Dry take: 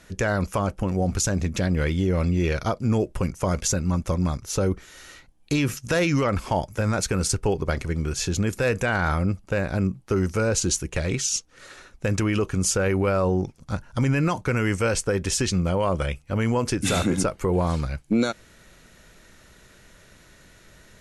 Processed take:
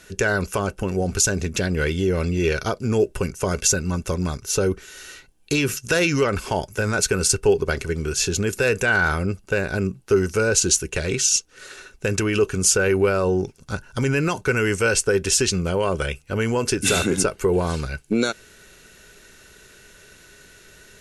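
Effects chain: treble shelf 2.4 kHz +9 dB; small resonant body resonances 410/1500/2700 Hz, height 11 dB, ringing for 45 ms; trim -1.5 dB

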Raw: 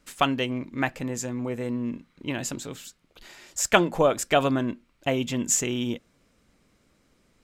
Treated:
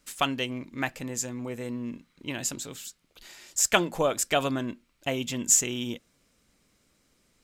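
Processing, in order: treble shelf 3.2 kHz +9.5 dB; trim -5 dB

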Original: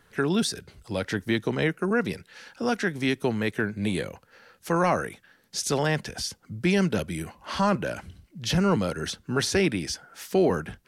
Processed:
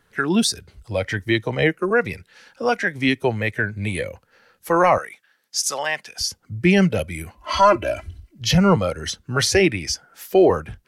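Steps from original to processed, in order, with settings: 4.98–6.21 s: high-pass 1.1 kHz 6 dB/octave; 7.37–8.41 s: comb 3 ms, depth 84%; spectral noise reduction 10 dB; trim +8 dB

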